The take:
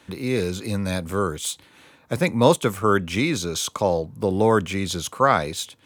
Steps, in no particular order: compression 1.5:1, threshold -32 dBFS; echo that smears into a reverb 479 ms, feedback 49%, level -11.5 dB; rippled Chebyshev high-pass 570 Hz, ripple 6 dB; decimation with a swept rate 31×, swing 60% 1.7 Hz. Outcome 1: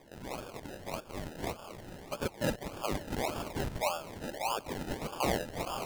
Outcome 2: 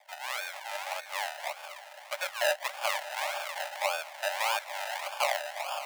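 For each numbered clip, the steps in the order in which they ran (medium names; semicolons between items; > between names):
echo that smears into a reverb > compression > rippled Chebyshev high-pass > decimation with a swept rate; echo that smears into a reverb > decimation with a swept rate > rippled Chebyshev high-pass > compression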